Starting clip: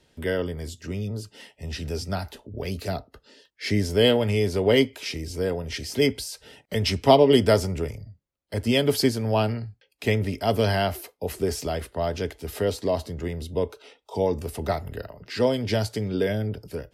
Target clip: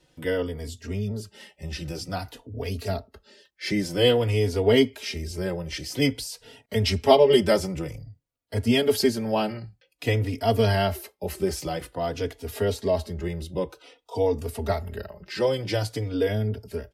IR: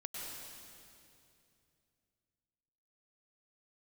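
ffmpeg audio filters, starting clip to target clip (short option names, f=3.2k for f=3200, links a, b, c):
-filter_complex "[0:a]asplit=2[a][b];[b]adelay=3.5,afreqshift=-0.51[c];[a][c]amix=inputs=2:normalize=1,volume=2.5dB"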